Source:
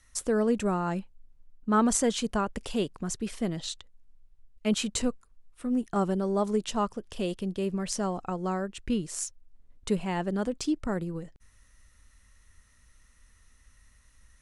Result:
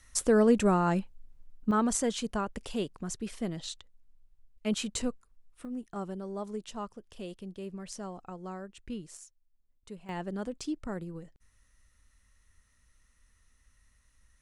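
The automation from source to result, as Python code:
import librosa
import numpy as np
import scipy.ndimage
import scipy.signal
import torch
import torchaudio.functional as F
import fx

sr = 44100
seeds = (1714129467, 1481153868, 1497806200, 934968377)

y = fx.gain(x, sr, db=fx.steps((0.0, 3.0), (1.71, -4.0), (5.65, -10.5), (9.17, -17.5), (10.09, -6.5)))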